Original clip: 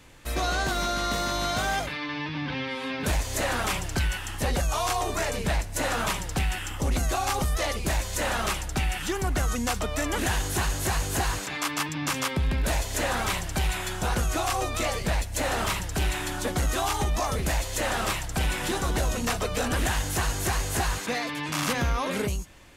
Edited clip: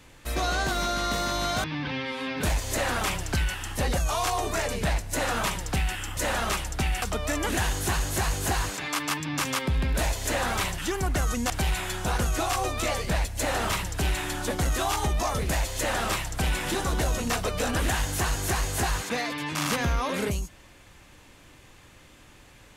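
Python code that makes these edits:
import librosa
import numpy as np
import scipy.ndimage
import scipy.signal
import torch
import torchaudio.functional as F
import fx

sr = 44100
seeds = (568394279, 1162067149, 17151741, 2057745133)

y = fx.edit(x, sr, fx.cut(start_s=1.64, length_s=0.63),
    fx.cut(start_s=6.8, length_s=1.34),
    fx.move(start_s=8.99, length_s=0.72, to_s=13.47), tone=tone)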